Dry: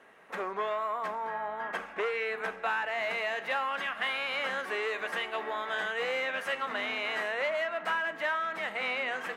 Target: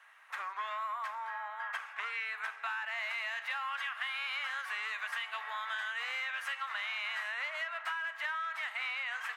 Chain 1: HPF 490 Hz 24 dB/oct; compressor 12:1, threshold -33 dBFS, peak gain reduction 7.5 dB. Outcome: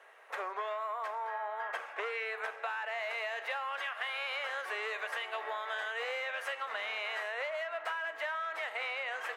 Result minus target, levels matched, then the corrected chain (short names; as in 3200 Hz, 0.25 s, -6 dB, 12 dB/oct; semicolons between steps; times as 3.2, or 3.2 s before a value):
500 Hz band +14.5 dB
HPF 1000 Hz 24 dB/oct; compressor 12:1, threshold -33 dBFS, peak gain reduction 6.5 dB